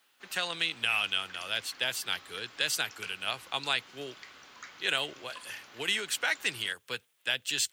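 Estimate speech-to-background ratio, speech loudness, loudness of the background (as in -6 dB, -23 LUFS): 17.5 dB, -31.5 LUFS, -49.0 LUFS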